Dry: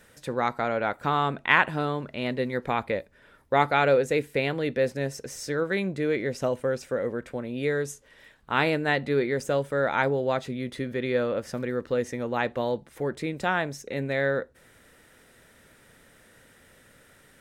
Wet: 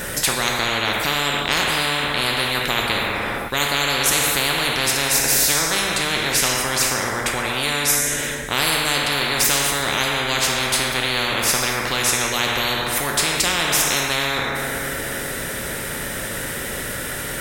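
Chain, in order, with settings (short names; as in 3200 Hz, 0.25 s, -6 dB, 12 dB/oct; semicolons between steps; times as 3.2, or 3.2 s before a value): high shelf 11000 Hz +10.5 dB; two-slope reverb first 1 s, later 2.8 s, DRR 1.5 dB; spectral compressor 10:1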